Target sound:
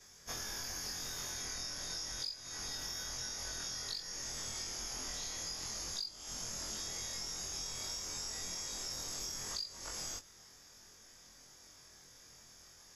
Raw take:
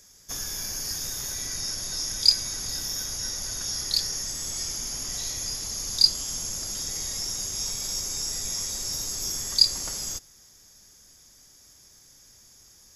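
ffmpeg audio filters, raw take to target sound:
-filter_complex "[0:a]afftfilt=real='re':imag='-im':win_size=2048:overlap=0.75,asplit=2[a][b];[b]highpass=f=720:p=1,volume=7dB,asoftclip=type=tanh:threshold=-8dB[c];[a][c]amix=inputs=2:normalize=0,lowpass=f=2k:p=1,volume=-6dB,acompressor=threshold=-43dB:ratio=16,volume=5dB"

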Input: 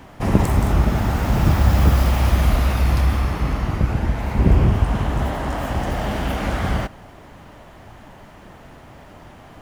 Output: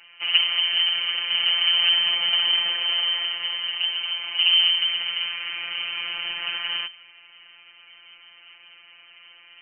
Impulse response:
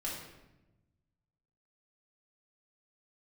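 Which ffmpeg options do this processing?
-af "aeval=exprs='0.891*(cos(1*acos(clip(val(0)/0.891,-1,1)))-cos(1*PI/2))+0.0891*(cos(3*acos(clip(val(0)/0.891,-1,1)))-cos(3*PI/2))+0.178*(cos(4*acos(clip(val(0)/0.891,-1,1)))-cos(4*PI/2))':c=same,lowpass=f=2.6k:t=q:w=0.5098,lowpass=f=2.6k:t=q:w=0.6013,lowpass=f=2.6k:t=q:w=0.9,lowpass=f=2.6k:t=q:w=2.563,afreqshift=-3100,afftfilt=real='hypot(re,im)*cos(PI*b)':imag='0':win_size=1024:overlap=0.75"

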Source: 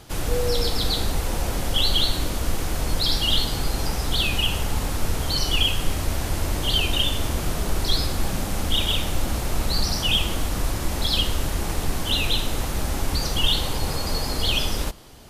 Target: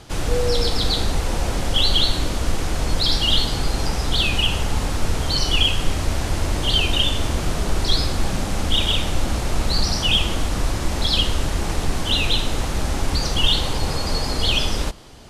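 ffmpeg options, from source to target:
-af "lowpass=8.6k,volume=3dB"

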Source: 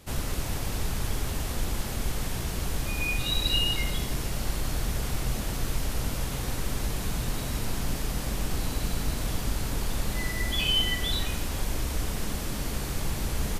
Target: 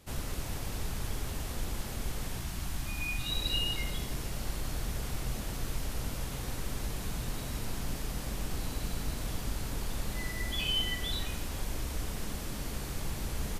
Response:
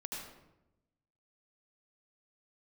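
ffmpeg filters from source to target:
-filter_complex "[0:a]asettb=1/sr,asplit=3[a][b][c];[a]atrim=end=2.394[d];[b]atrim=start=2.39:end=3.3,asetpts=PTS-STARTPTS,afade=t=in:d=0.004:c=qsin,afade=t=out:st=0.906:d=0.004:c=qsin,equalizer=f=470:w=3.4:g=-14[e];[c]atrim=start=3.296[f];[d][e]acrossfade=d=0.004:c1=hsin:c2=qsin[g];[g][f]acrossfade=d=0.004:c1=qsin:c2=hsin,volume=-6dB"

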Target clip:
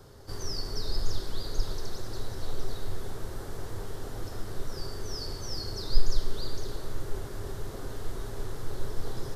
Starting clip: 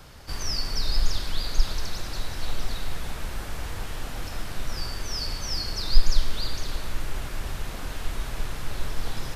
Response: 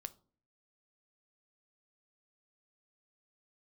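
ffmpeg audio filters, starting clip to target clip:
-filter_complex "[0:a]equalizer=f=100:t=o:w=0.67:g=6,equalizer=f=400:t=o:w=0.67:g=12,equalizer=f=2.5k:t=o:w=0.67:g=-11[a];[1:a]atrim=start_sample=2205[b];[a][b]afir=irnorm=-1:irlink=0,volume=-2dB"

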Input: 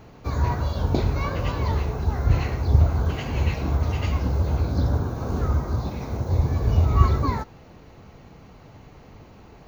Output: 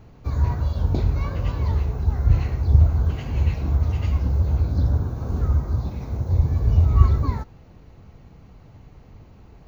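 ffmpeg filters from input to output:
-af "lowshelf=f=160:g=11.5,volume=-6.5dB"

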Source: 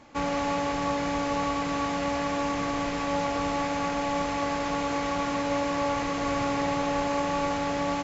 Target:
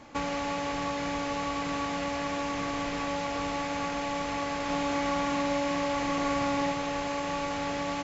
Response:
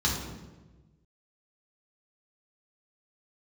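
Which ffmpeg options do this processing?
-filter_complex "[0:a]acrossover=split=1900|3900[a][b][c];[a]acompressor=threshold=-33dB:ratio=4[d];[b]acompressor=threshold=-43dB:ratio=4[e];[c]acompressor=threshold=-50dB:ratio=4[f];[d][e][f]amix=inputs=3:normalize=0,asettb=1/sr,asplit=3[g][h][i];[g]atrim=end=4.644[j];[h]atrim=start=4.64:end=6.72,asetpts=PTS-STARTPTS,afade=t=in:d=0.004:c=qsin,afade=t=out:st=2.076:d=0.004:c=qsin,asplit=2[k][l];[l]adelay=46,volume=-4dB[m];[k][m]amix=inputs=2:normalize=0,atrim=end_sample=91728[n];[i]atrim=start=6.716[o];[j][n]acrossfade=d=0.004:c1=hsin:c2=qsin[p];[p][o]acrossfade=d=0.004:c1=qsin:c2=hsin,volume=2.5dB"

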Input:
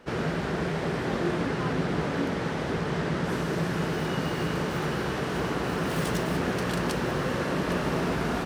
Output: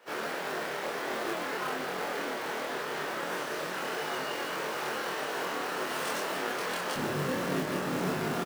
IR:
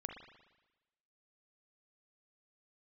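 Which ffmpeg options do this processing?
-filter_complex "[0:a]asetnsamples=n=441:p=0,asendcmd='6.96 highpass f 140',highpass=520,alimiter=limit=-20dB:level=0:latency=1:release=415,flanger=delay=18.5:depth=4.9:speed=1.7,acrusher=bits=3:mode=log:mix=0:aa=0.000001,asplit=2[a][b];[b]adelay=27,volume=-2dB[c];[a][c]amix=inputs=2:normalize=0"

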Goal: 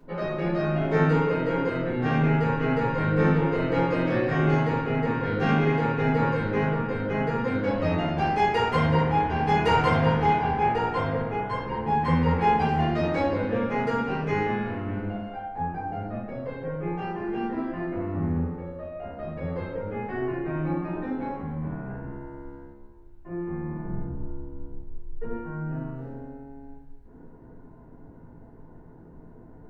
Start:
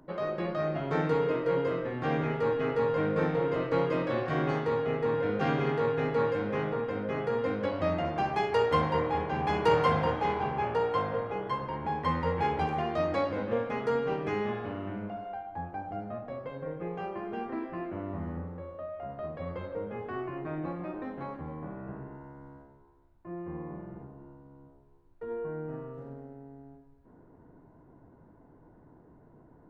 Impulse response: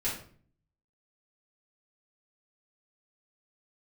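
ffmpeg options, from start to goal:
-filter_complex "[0:a]asettb=1/sr,asplit=3[a][b][c];[a]atrim=end=23.844[d];[b]atrim=start=23.84:end=25.33,asetpts=PTS-STARTPTS,afade=t=in:d=0.004:c=qsin,afade=t=out:st=1.486:d=0.004:c=qsin,lowshelf=f=170:g=12[e];[c]atrim=start=25.326[f];[d][e]acrossfade=d=0.004:c1=hsin:c2=qsin[g];[g][f]acrossfade=d=0.004:c1=qsin:c2=hsin[h];[1:a]atrim=start_sample=2205[i];[h][i]afir=irnorm=-1:irlink=0"

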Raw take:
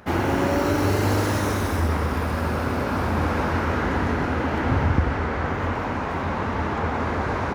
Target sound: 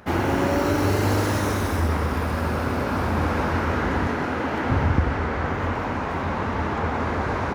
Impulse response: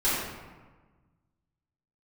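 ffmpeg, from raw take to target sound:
-filter_complex "[0:a]asettb=1/sr,asplit=3[a][b][c];[a]atrim=end=4.074[d];[b]atrim=start=4.07:end=4.7,asetpts=PTS-STARTPTS,afade=t=in:d=0.004:c=qsin,afade=t=out:st=0.626:d=0.004:c=qsin,highpass=f=170:p=1[e];[c]atrim=start=4.696[f];[d][e]acrossfade=d=0.004:c1=hsin:c2=qsin[g];[g][f]acrossfade=d=0.004:c1=qsin:c2=hsin"

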